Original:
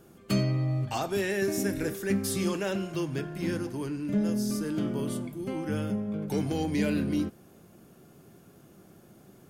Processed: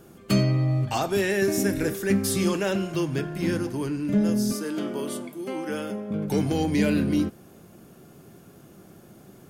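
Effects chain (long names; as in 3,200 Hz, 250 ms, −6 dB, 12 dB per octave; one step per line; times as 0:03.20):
0:04.52–0:06.11: high-pass filter 320 Hz 12 dB per octave
level +5 dB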